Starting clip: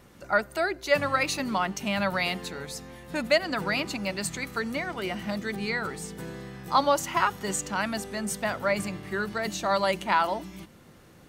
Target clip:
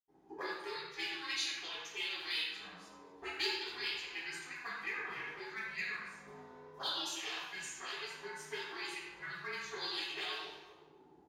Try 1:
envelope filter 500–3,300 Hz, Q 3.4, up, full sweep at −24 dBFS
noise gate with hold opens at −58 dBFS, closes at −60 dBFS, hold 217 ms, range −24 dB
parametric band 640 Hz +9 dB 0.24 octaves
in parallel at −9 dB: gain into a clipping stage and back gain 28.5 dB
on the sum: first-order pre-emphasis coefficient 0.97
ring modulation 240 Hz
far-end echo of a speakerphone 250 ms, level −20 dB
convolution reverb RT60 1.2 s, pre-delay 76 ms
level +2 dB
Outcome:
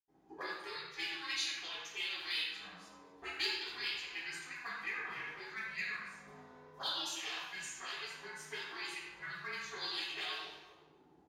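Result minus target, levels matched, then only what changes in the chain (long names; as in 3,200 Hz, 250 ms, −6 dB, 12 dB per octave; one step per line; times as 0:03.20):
500 Hz band −4.0 dB
change: parametric band 640 Hz +15.5 dB 0.24 octaves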